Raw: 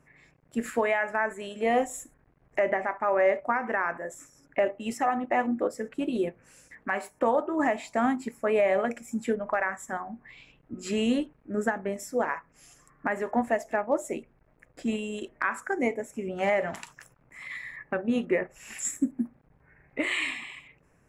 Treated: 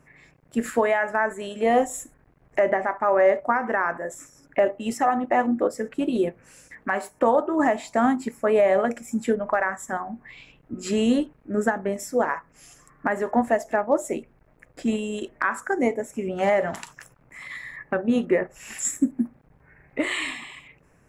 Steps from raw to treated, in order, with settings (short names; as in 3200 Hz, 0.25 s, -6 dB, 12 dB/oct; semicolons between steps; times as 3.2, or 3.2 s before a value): dynamic EQ 2400 Hz, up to -7 dB, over -48 dBFS, Q 2.5; gain +5 dB